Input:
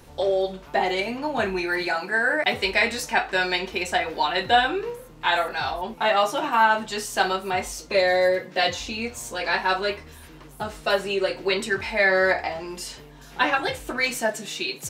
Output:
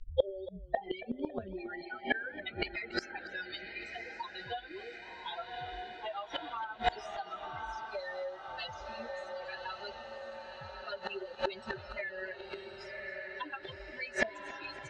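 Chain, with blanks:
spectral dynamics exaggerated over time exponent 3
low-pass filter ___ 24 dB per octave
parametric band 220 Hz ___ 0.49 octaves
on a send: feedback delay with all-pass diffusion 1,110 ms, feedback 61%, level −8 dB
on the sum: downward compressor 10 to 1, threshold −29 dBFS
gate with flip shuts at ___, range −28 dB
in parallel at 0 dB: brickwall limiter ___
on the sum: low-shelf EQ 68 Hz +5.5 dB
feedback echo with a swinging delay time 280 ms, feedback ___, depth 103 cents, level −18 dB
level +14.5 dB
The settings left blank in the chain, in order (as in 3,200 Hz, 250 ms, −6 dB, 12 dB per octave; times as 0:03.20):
4,900 Hz, −6.5 dB, −32 dBFS, −40 dBFS, 53%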